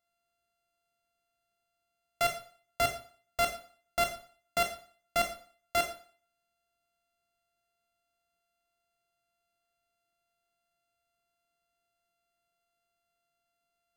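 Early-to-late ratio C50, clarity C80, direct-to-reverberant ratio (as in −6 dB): 8.5 dB, 12.5 dB, 3.5 dB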